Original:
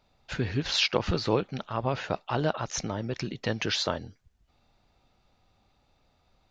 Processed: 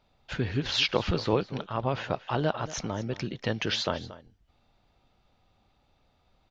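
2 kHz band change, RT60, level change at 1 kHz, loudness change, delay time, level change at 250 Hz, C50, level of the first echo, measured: -0.5 dB, no reverb, 0.0 dB, -0.5 dB, 230 ms, 0.0 dB, no reverb, -16.5 dB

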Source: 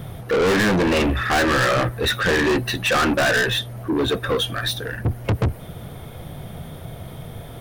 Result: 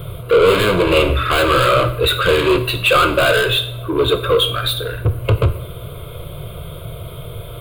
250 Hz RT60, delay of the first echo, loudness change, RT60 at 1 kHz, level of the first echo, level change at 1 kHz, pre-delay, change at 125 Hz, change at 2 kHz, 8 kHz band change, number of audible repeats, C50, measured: 0.65 s, no echo, +5.0 dB, 0.70 s, no echo, +5.5 dB, 7 ms, +5.0 dB, +2.0 dB, 0.0 dB, no echo, 12.5 dB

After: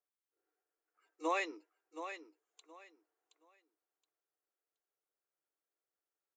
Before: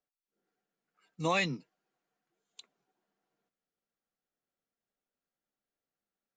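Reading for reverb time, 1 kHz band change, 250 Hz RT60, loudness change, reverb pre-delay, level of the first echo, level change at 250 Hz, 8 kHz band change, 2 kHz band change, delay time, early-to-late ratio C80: no reverb, -2.5 dB, no reverb, -7.5 dB, no reverb, -10.0 dB, -7.5 dB, -7.0 dB, -6.0 dB, 722 ms, no reverb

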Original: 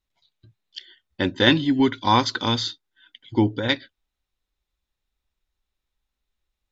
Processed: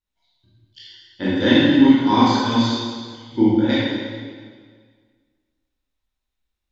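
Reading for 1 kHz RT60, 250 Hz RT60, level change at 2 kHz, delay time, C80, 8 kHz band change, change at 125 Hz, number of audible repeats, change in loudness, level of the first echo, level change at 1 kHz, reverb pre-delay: 1.7 s, 1.8 s, +0.5 dB, no echo, -1.0 dB, no reading, +2.0 dB, no echo, +4.5 dB, no echo, +2.0 dB, 17 ms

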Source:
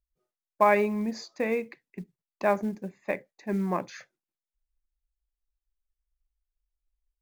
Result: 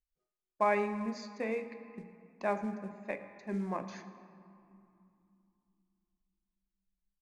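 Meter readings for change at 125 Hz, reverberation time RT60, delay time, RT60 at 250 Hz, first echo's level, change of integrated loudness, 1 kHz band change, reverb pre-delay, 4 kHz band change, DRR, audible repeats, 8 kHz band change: -7.0 dB, 2.7 s, 111 ms, 3.9 s, -20.5 dB, -7.5 dB, -7.0 dB, 4 ms, -7.0 dB, 9.0 dB, 1, -7.5 dB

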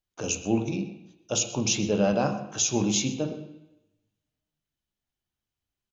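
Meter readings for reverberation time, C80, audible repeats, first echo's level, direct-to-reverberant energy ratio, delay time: 0.90 s, 11.0 dB, 1, -17.5 dB, 4.0 dB, 126 ms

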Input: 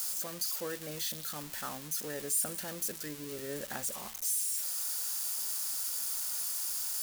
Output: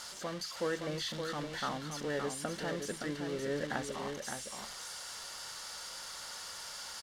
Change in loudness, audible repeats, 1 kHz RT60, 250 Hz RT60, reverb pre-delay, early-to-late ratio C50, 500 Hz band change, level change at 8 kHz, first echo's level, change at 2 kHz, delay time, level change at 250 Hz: -5.5 dB, 1, no reverb, no reverb, no reverb, no reverb, +5.5 dB, -10.5 dB, -6.0 dB, +4.5 dB, 568 ms, +5.5 dB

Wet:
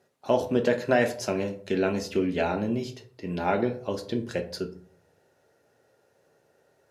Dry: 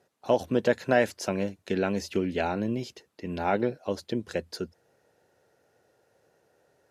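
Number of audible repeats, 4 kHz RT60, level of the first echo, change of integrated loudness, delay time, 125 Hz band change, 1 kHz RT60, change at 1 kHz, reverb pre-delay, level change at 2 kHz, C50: no echo, 0.30 s, no echo, +1.0 dB, no echo, +1.0 dB, 0.45 s, +0.5 dB, 3 ms, +0.5 dB, 12.5 dB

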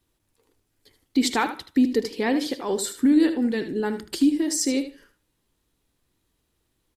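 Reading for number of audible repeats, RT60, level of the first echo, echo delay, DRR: 2, no reverb, -11.0 dB, 77 ms, no reverb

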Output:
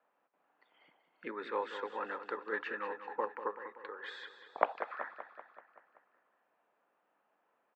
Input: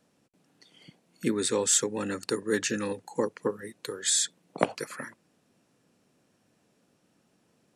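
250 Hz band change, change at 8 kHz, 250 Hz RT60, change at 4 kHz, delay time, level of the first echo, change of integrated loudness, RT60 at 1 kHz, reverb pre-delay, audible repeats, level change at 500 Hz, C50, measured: -18.5 dB, under -40 dB, no reverb, -19.5 dB, 191 ms, -11.0 dB, -11.0 dB, no reverb, no reverb, 6, -9.0 dB, no reverb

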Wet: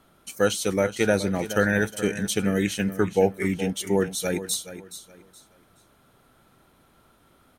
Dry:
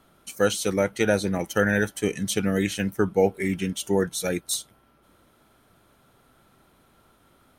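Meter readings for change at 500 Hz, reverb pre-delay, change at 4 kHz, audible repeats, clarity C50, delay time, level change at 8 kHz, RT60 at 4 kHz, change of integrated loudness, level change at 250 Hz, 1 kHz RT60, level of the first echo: 0.0 dB, no reverb, 0.0 dB, 2, no reverb, 422 ms, 0.0 dB, no reverb, +0.5 dB, +0.5 dB, no reverb, -13.0 dB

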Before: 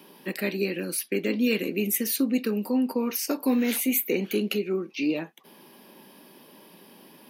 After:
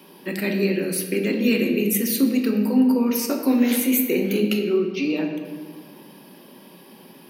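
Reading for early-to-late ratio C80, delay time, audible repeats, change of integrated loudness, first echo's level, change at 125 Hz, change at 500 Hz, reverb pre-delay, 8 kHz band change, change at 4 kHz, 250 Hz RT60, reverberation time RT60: 7.5 dB, no echo, no echo, +5.0 dB, no echo, +7.0 dB, +5.0 dB, 5 ms, +2.5 dB, +3.5 dB, 2.1 s, 1.6 s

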